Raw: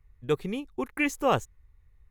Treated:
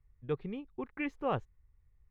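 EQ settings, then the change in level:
high-frequency loss of the air 340 metres
parametric band 140 Hz +3 dB
−7.5 dB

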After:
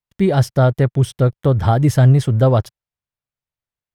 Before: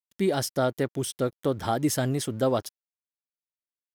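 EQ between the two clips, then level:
bass and treble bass −11 dB, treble −5 dB
spectral tilt −2 dB per octave
low shelf with overshoot 190 Hz +13.5 dB, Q 1.5
+8.5 dB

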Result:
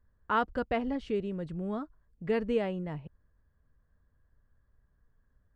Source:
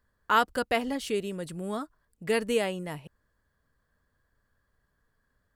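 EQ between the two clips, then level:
head-to-tape spacing loss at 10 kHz 30 dB
low-shelf EQ 130 Hz +11.5 dB
−2.0 dB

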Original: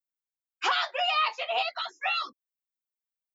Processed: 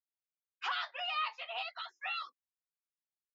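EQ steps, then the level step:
high-pass filter 1,000 Hz 12 dB per octave
high-frequency loss of the air 150 metres
notch filter 2,300 Hz, Q 24
−6.5 dB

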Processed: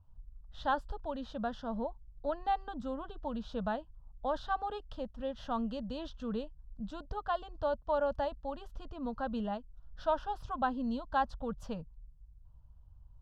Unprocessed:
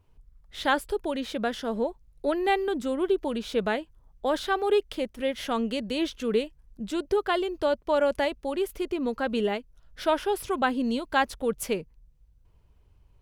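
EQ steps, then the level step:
high-frequency loss of the air 200 metres
low-shelf EQ 170 Hz +8.5 dB
phaser with its sweep stopped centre 910 Hz, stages 4
−4.0 dB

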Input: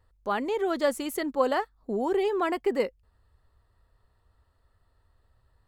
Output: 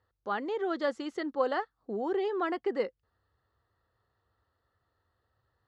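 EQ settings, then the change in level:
loudspeaker in its box 150–6,000 Hz, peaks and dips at 170 Hz −8 dB, 250 Hz −7 dB, 410 Hz −4 dB, 620 Hz −6 dB, 960 Hz −6 dB, 2,400 Hz −8 dB
high-shelf EQ 4,000 Hz −10 dB
0.0 dB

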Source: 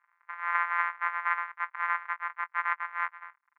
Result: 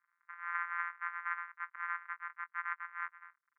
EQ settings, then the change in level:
four-pole ladder band-pass 1,700 Hz, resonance 40%
0.0 dB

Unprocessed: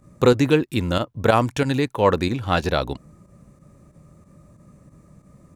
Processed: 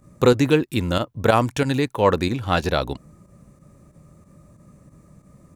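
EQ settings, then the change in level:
high-shelf EQ 8,900 Hz +4 dB
0.0 dB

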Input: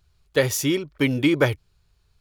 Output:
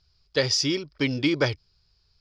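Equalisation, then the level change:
transistor ladder low-pass 5,200 Hz, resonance 85%
+8.5 dB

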